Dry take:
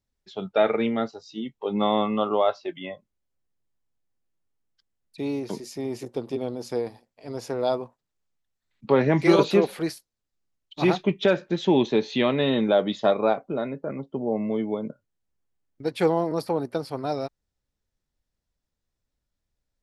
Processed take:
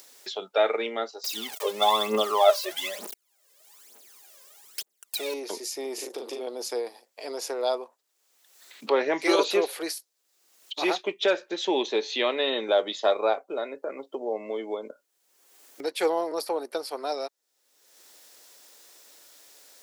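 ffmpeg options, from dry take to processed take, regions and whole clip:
-filter_complex "[0:a]asettb=1/sr,asplit=3[a][b][c];[a]atrim=end=1.244[d];[b]atrim=start=1.24:end=5.34,asetpts=PTS-STARTPTS,afade=t=in:d=0.004:c=qsin,afade=t=out:st=4.096:d=0.004:c=qsin,aeval=exprs='val(0)+0.5*0.015*sgn(val(0))':c=same,aecho=1:1:4.9:0.43,atrim=end_sample=180810,aphaser=in_gain=1:out_gain=1:delay=2:decay=0.73:speed=1.1:type=triangular[e];[c]atrim=start=5.336[f];[d][e]acrossfade=d=0.004:c1=hsin:c2=qsin[g];[g][f]acrossfade=d=0.004:c1=qsin:c2=hsin,asettb=1/sr,asplit=3[h][i][j];[h]atrim=end=5.944[k];[i]atrim=start=5.94:end=6.47,asetpts=PTS-STARTPTS,afade=t=in:d=0.004:c=qsin,afade=t=out:st=0.526:d=0.004:c=qsin,acompressor=threshold=-34dB:ratio=2.5:attack=3.2:release=140:knee=1:detection=peak,asplit=2[l][m];[m]adelay=39,volume=-3dB[n];[l][n]amix=inputs=2:normalize=0,atrim=end_sample=23373[o];[j]atrim=start=6.466[p];[k][o]acrossfade=d=0.004:c1=hsin:c2=qsin[q];[q][p]acrossfade=d=0.004:c1=qsin:c2=hsin,highpass=f=370:w=0.5412,highpass=f=370:w=1.3066,highshelf=f=3.9k:g=10.5,acompressor=mode=upward:threshold=-26dB:ratio=2.5,volume=-2dB"

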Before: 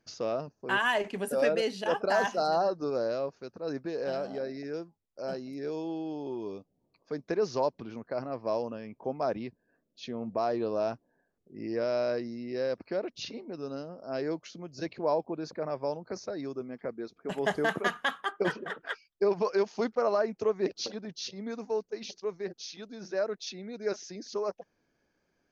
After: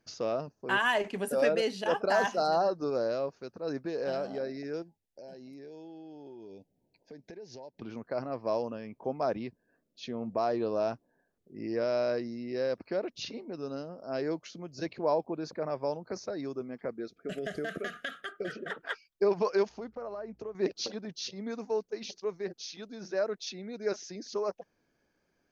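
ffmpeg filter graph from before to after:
-filter_complex "[0:a]asettb=1/sr,asplit=3[a][b][c];[a]atrim=end=4.824[d];[b]atrim=start=4.82:end=7.82,asetpts=PTS-STARTPTS,afade=t=in:d=0.004:c=qsin,afade=t=out:st=2.996:d=0.004:c=qsin,asuperstop=centerf=1200:order=8:qfactor=2.1,acompressor=threshold=-45dB:ratio=5:attack=3.2:release=140:knee=1:detection=peak[e];[c]atrim=start=7.816[f];[d][e]acrossfade=d=0.004:c1=hsin:c2=qsin[g];[g][f]acrossfade=d=0.004:c1=qsin:c2=hsin,asettb=1/sr,asplit=3[h][i][j];[h]atrim=end=16.994[k];[i]atrim=start=16.99:end=18.71,asetpts=PTS-STARTPTS,afade=t=in:d=0.004:c=qsin,afade=t=out:st=1.716:d=0.004:c=qsin,acompressor=threshold=-30dB:ratio=12:attack=3.2:release=140:knee=1:detection=peak,asuperstop=centerf=940:order=8:qfactor=1.8[l];[j]atrim=start=18.706[m];[k][l]acrossfade=d=0.004:c1=hsin:c2=qsin[n];[n][m]acrossfade=d=0.004:c1=qsin:c2=hsin,asettb=1/sr,asplit=3[o][p][q];[o]atrim=end=19.694[r];[p]atrim=start=19.69:end=20.55,asetpts=PTS-STARTPTS,afade=t=in:d=0.004:c=qsin,afade=t=out:st=0.856:d=0.004:c=qsin,highshelf=f=2.1k:g=-9.5,acompressor=threshold=-40dB:ratio=3:attack=3.2:release=140:knee=1:detection=peak,aeval=exprs='val(0)+0.000501*(sin(2*PI*60*n/s)+sin(2*PI*2*60*n/s)/2+sin(2*PI*3*60*n/s)/3+sin(2*PI*4*60*n/s)/4+sin(2*PI*5*60*n/s)/5)':c=same[s];[q]atrim=start=20.546[t];[r][s]acrossfade=d=0.004:c1=hsin:c2=qsin[u];[u][t]acrossfade=d=0.004:c1=qsin:c2=hsin"

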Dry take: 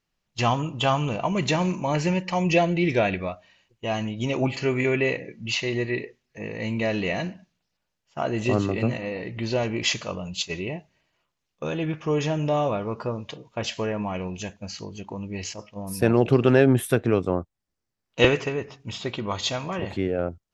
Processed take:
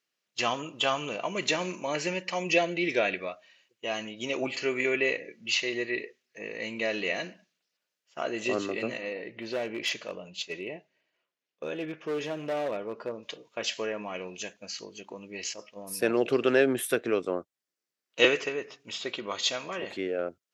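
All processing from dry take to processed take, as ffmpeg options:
-filter_complex "[0:a]asettb=1/sr,asplit=3[a][b][c];[a]atrim=end=9.134[d];[b]atrim=start=9.13:end=13.23,asetpts=PTS-STARTPTS,afade=t=in:d=0.004:c=qsin,afade=t=out:st=4.096:d=0.004:c=qsin,lowpass=f=2k:p=1,equalizer=f=1.2k:w=4.3:g=-5,volume=21.5dB,asoftclip=hard,volume=-21.5dB[e];[c]atrim=start=13.226[f];[d][e]acrossfade=d=0.004:c1=hsin:c2=qsin[g];[g][f]acrossfade=d=0.004:c1=qsin:c2=hsin,highpass=420,equalizer=f=860:w=1.8:g=-9"

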